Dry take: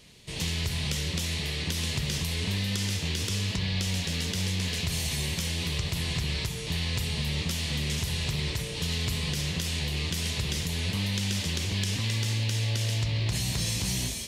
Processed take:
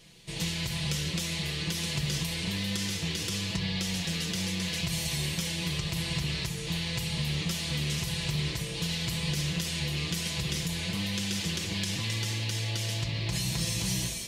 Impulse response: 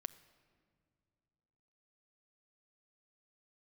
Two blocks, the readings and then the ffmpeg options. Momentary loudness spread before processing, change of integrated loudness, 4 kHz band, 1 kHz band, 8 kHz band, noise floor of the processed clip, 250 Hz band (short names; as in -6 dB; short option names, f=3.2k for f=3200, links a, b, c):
2 LU, -1.5 dB, -1.0 dB, -0.5 dB, -1.0 dB, -36 dBFS, +0.5 dB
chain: -filter_complex "[0:a]asplit=2[a][b];[1:a]atrim=start_sample=2205,adelay=6[c];[b][c]afir=irnorm=-1:irlink=0,volume=0dB[d];[a][d]amix=inputs=2:normalize=0,volume=-2.5dB"